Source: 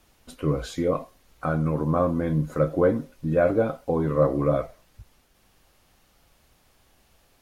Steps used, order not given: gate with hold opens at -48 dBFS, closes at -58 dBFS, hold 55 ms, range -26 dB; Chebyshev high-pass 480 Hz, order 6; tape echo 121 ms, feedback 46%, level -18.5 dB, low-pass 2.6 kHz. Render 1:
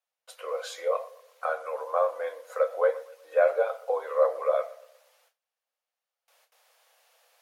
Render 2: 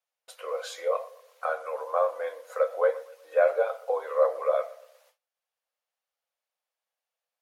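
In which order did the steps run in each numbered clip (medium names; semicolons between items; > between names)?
tape echo > gate with hold > Chebyshev high-pass; tape echo > Chebyshev high-pass > gate with hold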